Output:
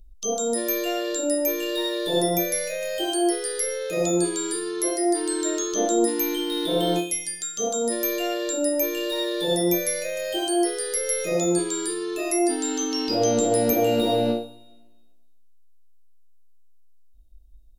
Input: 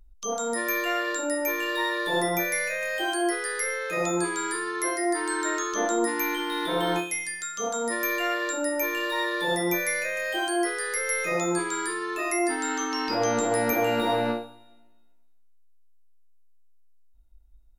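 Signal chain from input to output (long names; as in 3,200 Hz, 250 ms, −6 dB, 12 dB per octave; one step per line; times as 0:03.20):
flat-topped bell 1,400 Hz −15 dB
level +5 dB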